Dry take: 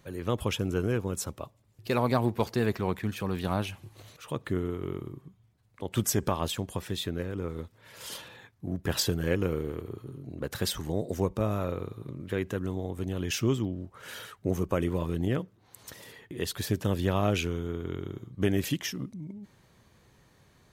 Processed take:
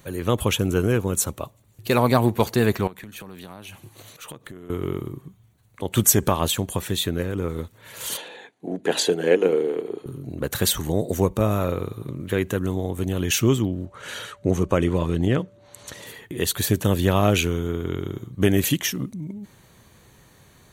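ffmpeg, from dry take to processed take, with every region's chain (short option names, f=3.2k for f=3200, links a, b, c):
-filter_complex "[0:a]asettb=1/sr,asplit=3[a][b][c];[a]atrim=end=2.874[d];[b]atrim=start=2.87:end=4.7,asetpts=PTS-STARTPTS,afade=t=in:d=0.004:c=qsin,afade=t=out:st=1.826:d=0.004:c=qsin,highpass=120,acompressor=threshold=-41dB:ratio=10:attack=3.2:release=140:knee=1:detection=peak,aeval=exprs='(tanh(22.4*val(0)+0.5)-tanh(0.5))/22.4':c=same[e];[c]atrim=start=4.696[f];[d][e]acrossfade=d=0.004:c1=hsin:c2=qsin[g];[g][f]acrossfade=d=0.004:c1=qsin:c2=hsin,asettb=1/sr,asplit=3[h][i][j];[h]atrim=end=8.174[k];[i]atrim=start=8.17:end=10.06,asetpts=PTS-STARTPTS,afade=t=in:d=0.004:c=qsin,afade=t=out:st=1.886:d=0.004:c=qsin,highpass=f=210:w=0.5412,highpass=f=210:w=1.3066,equalizer=f=220:t=q:w=4:g=-3,equalizer=f=450:t=q:w=4:g=7,equalizer=f=750:t=q:w=4:g=6,equalizer=f=1.2k:t=q:w=4:g=-7,equalizer=f=5.6k:t=q:w=4:g=-8,equalizer=f=8k:t=q:w=4:g=-7,lowpass=f=8.8k:w=0.5412,lowpass=f=8.8k:w=1.3066,bandreject=f=50:t=h:w=6,bandreject=f=100:t=h:w=6,bandreject=f=150:t=h:w=6,bandreject=f=200:t=h:w=6,bandreject=f=250:t=h:w=6,bandreject=f=300:t=h:w=6[l];[j]atrim=start=10.056[m];[k][l]acrossfade=d=0.004:c1=hsin:c2=qsin[n];[n][m]acrossfade=d=0.004:c1=qsin:c2=hsin,asettb=1/sr,asplit=3[o][p][q];[o]atrim=end=13.854[r];[p]atrim=start=13.85:end=16.07,asetpts=PTS-STARTPTS,afade=t=in:d=0.004:c=qsin,afade=t=out:st=2.216:d=0.004:c=qsin,lowpass=7k,aeval=exprs='val(0)+0.001*sin(2*PI*580*n/s)':c=same[s];[q]atrim=start=16.066[t];[r][s]acrossfade=d=0.004:c1=hsin:c2=qsin[u];[u][t]acrossfade=d=0.004:c1=qsin:c2=hsin,highshelf=f=5.9k:g=8,bandreject=f=5.1k:w=5.4,volume=7.5dB"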